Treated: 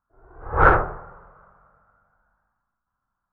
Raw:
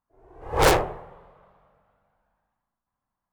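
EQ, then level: synth low-pass 1400 Hz, resonance Q 7.9; air absorption 190 m; low shelf 150 Hz +9 dB; -2.5 dB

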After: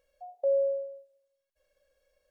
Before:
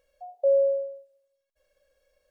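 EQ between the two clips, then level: dynamic EQ 650 Hz, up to -4 dB, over -36 dBFS, Q 3.1; -3.0 dB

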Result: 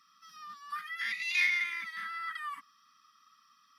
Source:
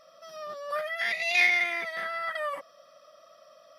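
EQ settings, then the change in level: HPF 190 Hz 12 dB/oct; elliptic band-stop 260–1100 Hz, stop band 80 dB; -4.5 dB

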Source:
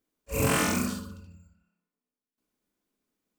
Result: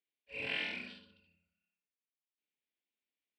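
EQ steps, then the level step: band-pass 2700 Hz, Q 1.1; air absorption 150 m; fixed phaser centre 2900 Hz, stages 4; 0.0 dB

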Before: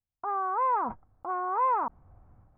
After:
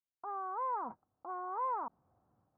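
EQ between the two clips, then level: HPF 180 Hz 12 dB/oct; LPF 1500 Hz 12 dB/oct; -9.0 dB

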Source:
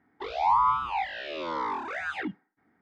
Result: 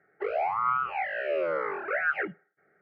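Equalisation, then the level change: speaker cabinet 130–3100 Hz, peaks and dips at 160 Hz +8 dB, 250 Hz +5 dB, 400 Hz +10 dB, 580 Hz +10 dB, 1400 Hz +7 dB; high shelf 2300 Hz +8 dB; fixed phaser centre 970 Hz, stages 6; 0.0 dB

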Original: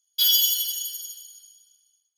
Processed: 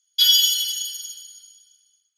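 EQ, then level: steep high-pass 1200 Hz 96 dB/oct; air absorption 50 m; +7.0 dB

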